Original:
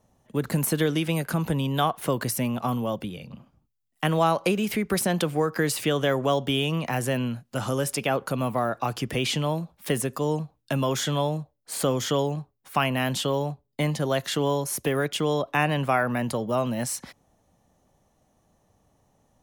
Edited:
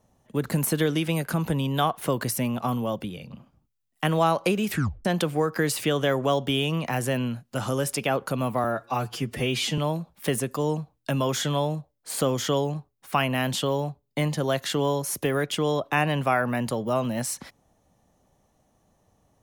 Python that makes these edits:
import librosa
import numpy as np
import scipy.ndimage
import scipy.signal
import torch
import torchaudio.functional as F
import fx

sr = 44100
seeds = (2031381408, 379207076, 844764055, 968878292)

y = fx.edit(x, sr, fx.tape_stop(start_s=4.69, length_s=0.36),
    fx.stretch_span(start_s=8.64, length_s=0.76, factor=1.5), tone=tone)